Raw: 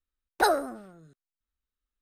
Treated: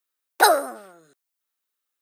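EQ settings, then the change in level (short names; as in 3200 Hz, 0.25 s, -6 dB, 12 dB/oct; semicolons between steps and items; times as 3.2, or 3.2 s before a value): HPF 460 Hz 12 dB/oct; high shelf 8700 Hz +9 dB; +7.5 dB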